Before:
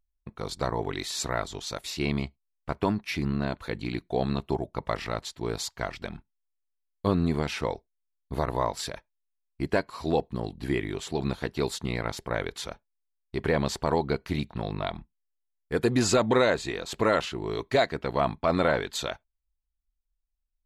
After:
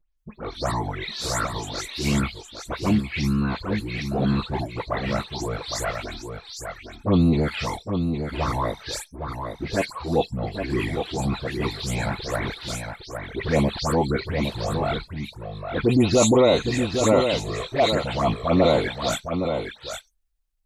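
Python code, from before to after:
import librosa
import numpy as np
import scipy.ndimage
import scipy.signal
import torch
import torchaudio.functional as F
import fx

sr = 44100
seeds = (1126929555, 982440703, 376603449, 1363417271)

p1 = fx.spec_delay(x, sr, highs='late', ms=169)
p2 = fx.transient(p1, sr, attack_db=-4, sustain_db=2)
p3 = fx.env_flanger(p2, sr, rest_ms=6.5, full_db=-22.0)
p4 = p3 + fx.echo_single(p3, sr, ms=811, db=-6.5, dry=0)
y = p4 * librosa.db_to_amplitude(8.0)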